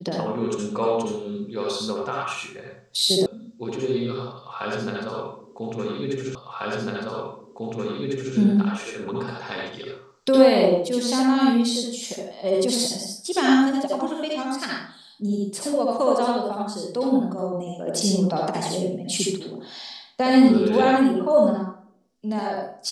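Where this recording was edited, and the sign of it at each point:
0:03.26: cut off before it has died away
0:06.35: the same again, the last 2 s

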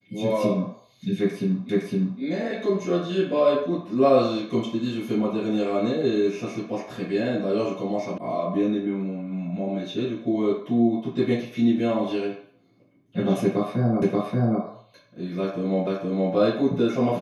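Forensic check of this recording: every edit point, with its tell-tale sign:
0:01.69: the same again, the last 0.51 s
0:08.18: cut off before it has died away
0:14.02: the same again, the last 0.58 s
0:15.87: the same again, the last 0.47 s

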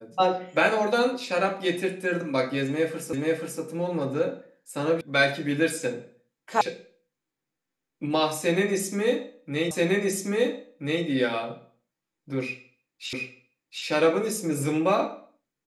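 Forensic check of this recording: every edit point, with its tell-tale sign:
0:03.13: the same again, the last 0.48 s
0:05.01: cut off before it has died away
0:06.61: cut off before it has died away
0:09.71: the same again, the last 1.33 s
0:13.13: the same again, the last 0.72 s

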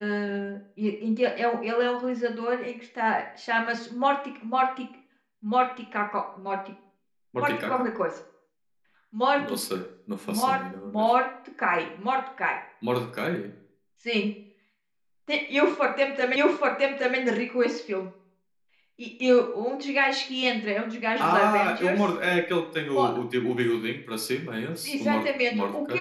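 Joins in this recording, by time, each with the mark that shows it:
0:16.36: the same again, the last 0.82 s

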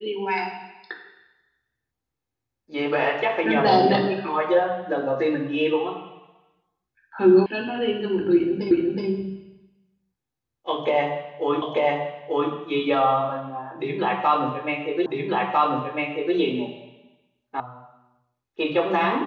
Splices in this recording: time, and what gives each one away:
0:07.46: cut off before it has died away
0:08.71: the same again, the last 0.37 s
0:11.62: the same again, the last 0.89 s
0:15.06: the same again, the last 1.3 s
0:17.60: cut off before it has died away

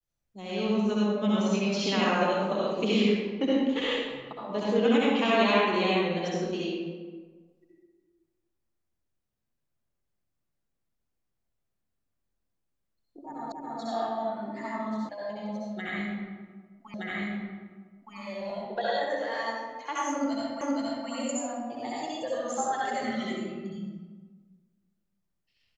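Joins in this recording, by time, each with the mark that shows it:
0:13.52: the same again, the last 0.28 s
0:15.09: cut off before it has died away
0:16.94: the same again, the last 1.22 s
0:20.61: the same again, the last 0.47 s

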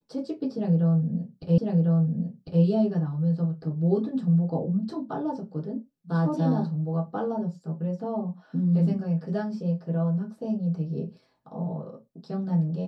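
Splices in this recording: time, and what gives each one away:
0:01.58: the same again, the last 1.05 s

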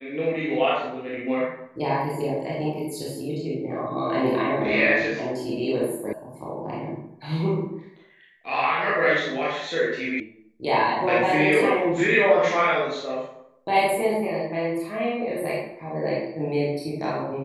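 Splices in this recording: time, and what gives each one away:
0:06.13: cut off before it has died away
0:10.20: cut off before it has died away

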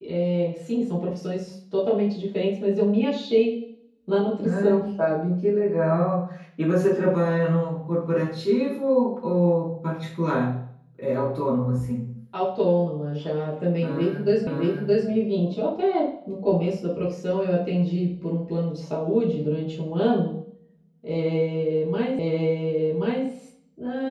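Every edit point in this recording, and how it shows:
0:14.47: the same again, the last 0.62 s
0:22.19: the same again, the last 1.08 s

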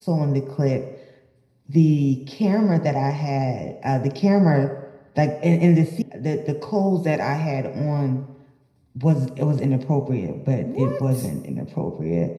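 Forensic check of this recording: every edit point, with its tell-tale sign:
0:06.02: cut off before it has died away

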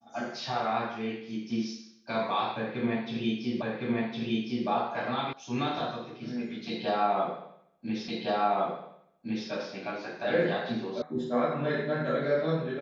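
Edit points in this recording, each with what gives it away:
0:03.62: the same again, the last 1.06 s
0:05.33: cut off before it has died away
0:08.08: the same again, the last 1.41 s
0:11.02: cut off before it has died away

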